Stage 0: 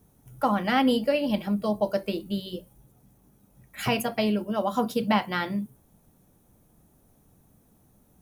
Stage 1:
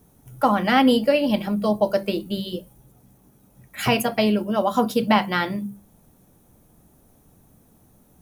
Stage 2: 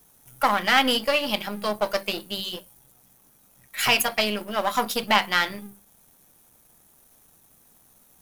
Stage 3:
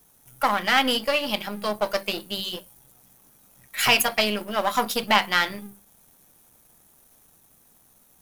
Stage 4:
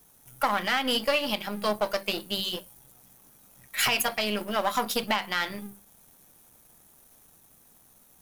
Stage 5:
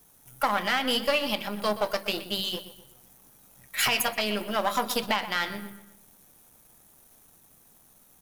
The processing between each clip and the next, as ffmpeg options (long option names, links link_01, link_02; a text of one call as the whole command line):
ffmpeg -i in.wav -af "bandreject=frequency=50:width_type=h:width=6,bandreject=frequency=100:width_type=h:width=6,bandreject=frequency=150:width_type=h:width=6,bandreject=frequency=200:width_type=h:width=6,volume=5.5dB" out.wav
ffmpeg -i in.wav -af "aeval=exprs='if(lt(val(0),0),0.447*val(0),val(0))':channel_layout=same,tiltshelf=frequency=730:gain=-9,volume=-1dB" out.wav
ffmpeg -i in.wav -af "dynaudnorm=framelen=510:gausssize=7:maxgain=11.5dB,volume=-1dB" out.wav
ffmpeg -i in.wav -af "alimiter=limit=-12.5dB:level=0:latency=1:release=228" out.wav
ffmpeg -i in.wav -filter_complex "[0:a]asplit=2[link_01][link_02];[link_02]adelay=124,lowpass=frequency=3900:poles=1,volume=-13dB,asplit=2[link_03][link_04];[link_04]adelay=124,lowpass=frequency=3900:poles=1,volume=0.45,asplit=2[link_05][link_06];[link_06]adelay=124,lowpass=frequency=3900:poles=1,volume=0.45,asplit=2[link_07][link_08];[link_08]adelay=124,lowpass=frequency=3900:poles=1,volume=0.45[link_09];[link_01][link_03][link_05][link_07][link_09]amix=inputs=5:normalize=0" out.wav